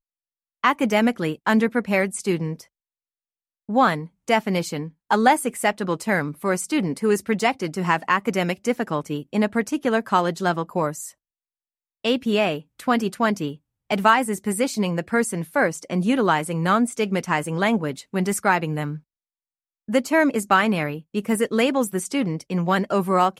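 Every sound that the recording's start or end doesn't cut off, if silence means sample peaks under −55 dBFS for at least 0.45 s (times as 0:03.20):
0:00.64–0:02.67
0:03.69–0:11.14
0:12.04–0:19.01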